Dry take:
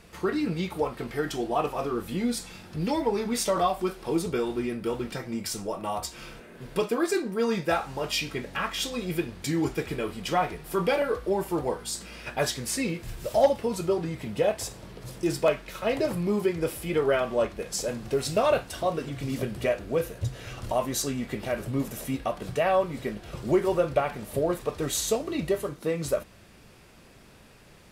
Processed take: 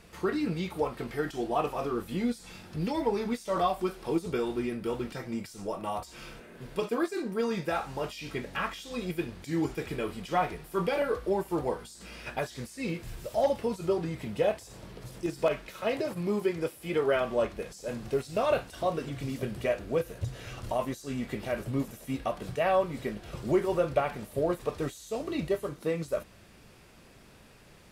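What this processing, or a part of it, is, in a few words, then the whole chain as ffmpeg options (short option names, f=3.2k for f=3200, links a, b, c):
de-esser from a sidechain: -filter_complex "[0:a]asettb=1/sr,asplit=3[a][b][c];[a]atrim=end=15.674[d];[b]atrim=start=15.67:end=17.16,asetpts=PTS-STARTPTS,afade=t=in:d=0.004:c=qsin,afade=t=out:st=1.486:d=0.004:c=qsin,highpass=f=150:p=1[e];[c]atrim=start=17.156[f];[d][e]acrossfade=d=0.004:c1=hsin:c2=qsin[g];[g][f]acrossfade=d=0.004:c1=qsin:c2=hsin,asplit=2[h][i];[i]highpass=f=5.6k:w=0.5412,highpass=f=5.6k:w=1.3066,apad=whole_len=1230940[j];[h][j]sidechaincompress=threshold=-48dB:ratio=4:attack=1:release=36,volume=-2dB"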